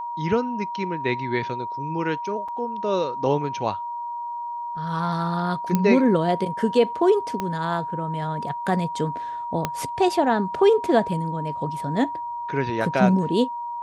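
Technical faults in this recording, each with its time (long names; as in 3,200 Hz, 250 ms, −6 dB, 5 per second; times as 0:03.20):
whistle 950 Hz −28 dBFS
0:02.48–0:02.49: drop-out 5.4 ms
0:05.75: click −8 dBFS
0:07.40: click −13 dBFS
0:09.65: click −8 dBFS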